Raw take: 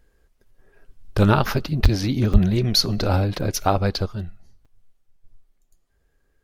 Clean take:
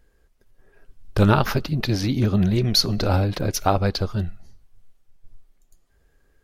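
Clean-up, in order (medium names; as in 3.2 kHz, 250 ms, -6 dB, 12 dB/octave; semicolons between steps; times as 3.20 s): de-plosive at 1.82/2.32 s; interpolate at 1.85/2.33/4.65 s, 5.4 ms; gain correction +5 dB, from 4.06 s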